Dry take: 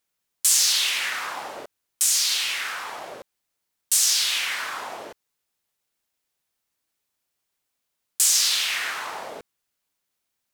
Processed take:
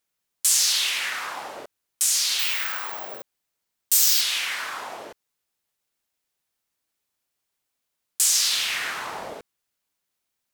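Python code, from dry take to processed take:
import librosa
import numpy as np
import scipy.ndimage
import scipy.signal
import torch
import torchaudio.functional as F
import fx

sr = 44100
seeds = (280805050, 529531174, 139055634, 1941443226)

y = fx.resample_bad(x, sr, factor=2, down='filtered', up='zero_stuff', at=(2.39, 4.21))
y = fx.low_shelf(y, sr, hz=270.0, db=11.5, at=(8.53, 9.34))
y = y * librosa.db_to_amplitude(-1.0)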